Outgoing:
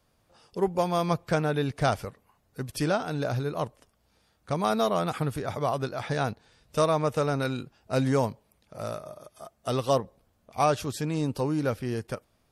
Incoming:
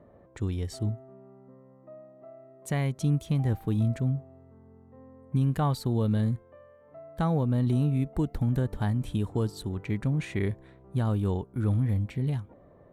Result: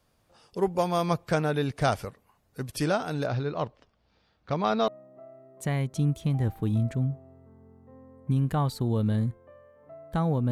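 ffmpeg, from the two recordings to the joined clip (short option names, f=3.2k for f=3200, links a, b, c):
-filter_complex "[0:a]asettb=1/sr,asplit=3[a][b][c];[a]atrim=end=3.264[d];[b]atrim=start=3.26:end=4.88,asetpts=PTS-STARTPTS,afade=t=in:d=0.004:c=qsin,afade=t=out:st=1.616:d=0.004:c=qsin,lowpass=f=4.9k:w=0.5412,lowpass=f=4.9k:w=1.3066[e];[c]atrim=start=4.876[f];[d][e]acrossfade=d=0.004:c1=hsin:c2=qsin[g];[g][f]acrossfade=d=0.004:c1=qsin:c2=hsin,apad=whole_dur=10.51,atrim=end=10.51,atrim=end=4.882[h];[1:a]atrim=start=1.928:end=7.56[i];[h][i]acrossfade=d=0.004:c1=hsin:c2=hsin"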